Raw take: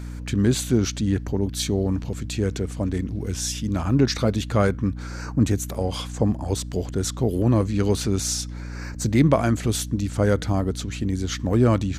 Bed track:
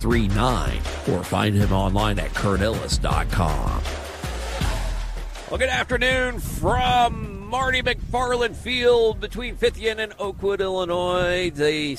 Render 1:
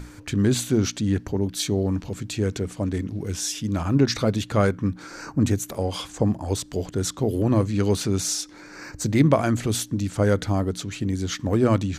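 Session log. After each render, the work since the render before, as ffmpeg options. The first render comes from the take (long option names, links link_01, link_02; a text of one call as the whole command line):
ffmpeg -i in.wav -af "bandreject=frequency=60:width_type=h:width=6,bandreject=frequency=120:width_type=h:width=6,bandreject=frequency=180:width_type=h:width=6,bandreject=frequency=240:width_type=h:width=6" out.wav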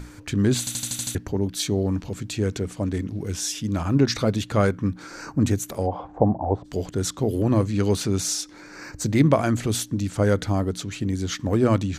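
ffmpeg -i in.wav -filter_complex "[0:a]asplit=3[link_01][link_02][link_03];[link_01]afade=type=out:start_time=5.86:duration=0.02[link_04];[link_02]lowpass=frequency=770:width_type=q:width=3.5,afade=type=in:start_time=5.86:duration=0.02,afade=type=out:start_time=6.64:duration=0.02[link_05];[link_03]afade=type=in:start_time=6.64:duration=0.02[link_06];[link_04][link_05][link_06]amix=inputs=3:normalize=0,asplit=8[link_07][link_08][link_09][link_10][link_11][link_12][link_13][link_14];[link_07]atrim=end=0.672[link_15];[link_08]atrim=start=0.588:end=0.672[link_16];[link_09]atrim=start=0.588:end=0.672[link_17];[link_10]atrim=start=0.588:end=0.672[link_18];[link_11]atrim=start=0.588:end=0.672[link_19];[link_12]atrim=start=0.588:end=0.672[link_20];[link_13]atrim=start=0.588:end=0.672[link_21];[link_14]atrim=start=1.148[link_22];[link_15][link_16]acrossfade=duration=0.004:curve1=hsin:curve2=hsin[link_23];[link_23][link_17]acrossfade=duration=0.004:curve1=hsin:curve2=hsin[link_24];[link_24][link_18]acrossfade=duration=0.004:curve1=hsin:curve2=hsin[link_25];[link_25][link_19]acrossfade=duration=0.004:curve1=hsin:curve2=hsin[link_26];[link_26][link_20]acrossfade=duration=0.004:curve1=hsin:curve2=hsin[link_27];[link_27][link_21]acrossfade=duration=0.004:curve1=hsin:curve2=hsin[link_28];[link_28][link_22]acrossfade=duration=0.004:curve1=hsin:curve2=hsin" out.wav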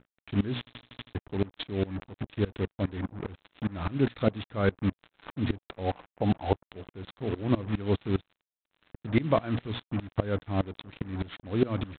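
ffmpeg -i in.wav -af "aresample=8000,acrusher=bits=4:mix=0:aa=0.5,aresample=44100,aeval=exprs='val(0)*pow(10,-23*if(lt(mod(-4.9*n/s,1),2*abs(-4.9)/1000),1-mod(-4.9*n/s,1)/(2*abs(-4.9)/1000),(mod(-4.9*n/s,1)-2*abs(-4.9)/1000)/(1-2*abs(-4.9)/1000))/20)':channel_layout=same" out.wav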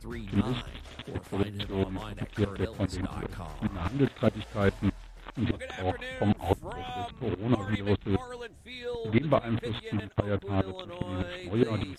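ffmpeg -i in.wav -i bed.wav -filter_complex "[1:a]volume=-19dB[link_01];[0:a][link_01]amix=inputs=2:normalize=0" out.wav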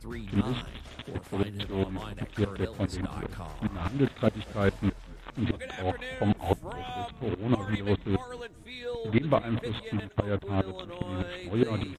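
ffmpeg -i in.wav -filter_complex "[0:a]asplit=4[link_01][link_02][link_03][link_04];[link_02]adelay=235,afreqshift=-33,volume=-23.5dB[link_05];[link_03]adelay=470,afreqshift=-66,volume=-29.9dB[link_06];[link_04]adelay=705,afreqshift=-99,volume=-36.3dB[link_07];[link_01][link_05][link_06][link_07]amix=inputs=4:normalize=0" out.wav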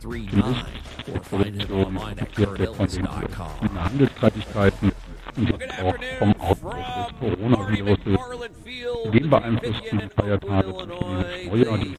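ffmpeg -i in.wav -af "volume=7.5dB,alimiter=limit=-3dB:level=0:latency=1" out.wav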